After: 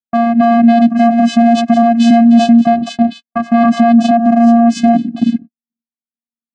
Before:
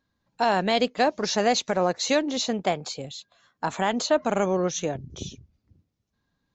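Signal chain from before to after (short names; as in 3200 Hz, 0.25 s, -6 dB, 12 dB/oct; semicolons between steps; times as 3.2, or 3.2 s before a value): vocal rider within 4 dB 2 s; low-pass opened by the level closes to 2100 Hz, open at -19 dBFS; vocoder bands 8, square 233 Hz; high shelf 2300 Hz -9.5 dB; reverse echo 0.282 s -9 dB; gate -48 dBFS, range -54 dB; compressor, threshold -25 dBFS, peak gain reduction 8.5 dB; maximiser +26 dB; gain -1 dB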